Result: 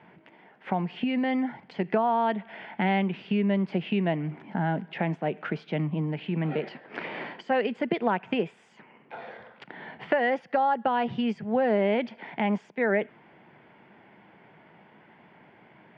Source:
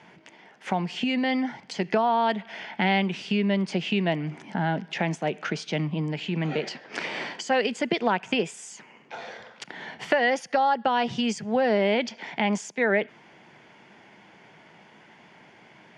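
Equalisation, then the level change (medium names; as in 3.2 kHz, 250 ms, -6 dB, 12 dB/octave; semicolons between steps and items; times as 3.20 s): distance through air 460 m; 0.0 dB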